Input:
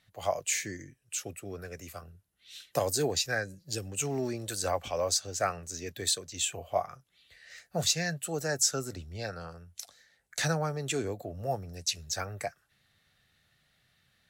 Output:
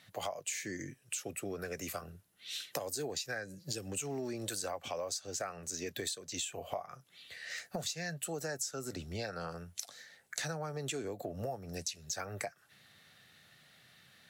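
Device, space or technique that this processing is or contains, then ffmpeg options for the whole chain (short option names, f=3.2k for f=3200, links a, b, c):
serial compression, peaks first: -af "highpass=140,acompressor=threshold=-41dB:ratio=4,acompressor=threshold=-47dB:ratio=2,volume=8.5dB"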